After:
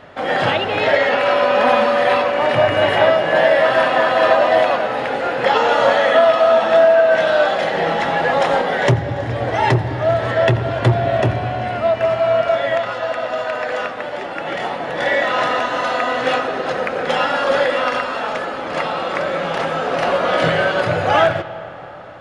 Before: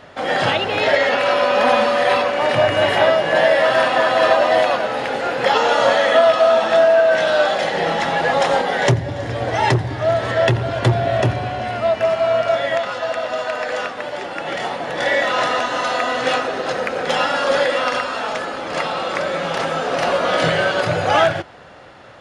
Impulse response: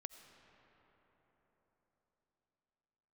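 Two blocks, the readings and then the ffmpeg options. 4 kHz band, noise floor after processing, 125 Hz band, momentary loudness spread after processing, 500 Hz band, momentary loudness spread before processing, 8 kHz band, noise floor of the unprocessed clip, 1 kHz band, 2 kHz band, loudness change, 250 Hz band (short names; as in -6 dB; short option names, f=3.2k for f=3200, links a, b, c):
-1.5 dB, -28 dBFS, +1.5 dB, 9 LU, +1.0 dB, 9 LU, n/a, -29 dBFS, +1.0 dB, +0.5 dB, +1.0 dB, +1.5 dB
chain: -filter_complex "[0:a]asplit=2[a][b];[1:a]atrim=start_sample=2205,lowpass=3.9k[c];[b][c]afir=irnorm=-1:irlink=0,volume=4.5dB[d];[a][d]amix=inputs=2:normalize=0,volume=-4.5dB"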